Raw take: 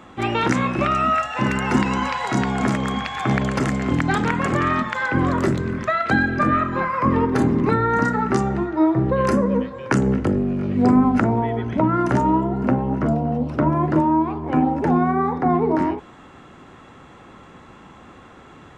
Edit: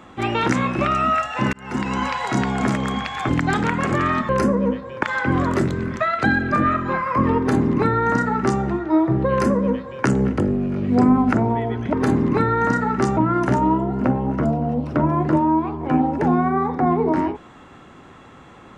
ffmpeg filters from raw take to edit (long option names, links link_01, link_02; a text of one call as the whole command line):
ffmpeg -i in.wav -filter_complex "[0:a]asplit=7[link_01][link_02][link_03][link_04][link_05][link_06][link_07];[link_01]atrim=end=1.53,asetpts=PTS-STARTPTS,afade=type=out:start_time=1.526:duration=0.004:curve=hsin[link_08];[link_02]atrim=start=1.53:end=3.292,asetpts=PTS-STARTPTS,afade=type=in:duration=0.49[link_09];[link_03]atrim=start=3.898:end=4.902[link_10];[link_04]atrim=start=9.178:end=9.922[link_11];[link_05]atrim=start=4.898:end=11.802[link_12];[link_06]atrim=start=7.248:end=8.492[link_13];[link_07]atrim=start=11.798[link_14];[link_08][link_09]concat=n=2:v=0:a=1[link_15];[link_15][link_10]acrossfade=duration=0.004:curve1=hsin:curve2=hsin[link_16];[link_16][link_11]acrossfade=duration=0.004:curve1=hsin:curve2=hsin[link_17];[link_17][link_12]acrossfade=duration=0.004:curve1=hsin:curve2=hsin[link_18];[link_18][link_13]acrossfade=duration=0.004:curve1=hsin:curve2=hsin[link_19];[link_19][link_14]acrossfade=duration=0.004:curve1=hsin:curve2=hsin" out.wav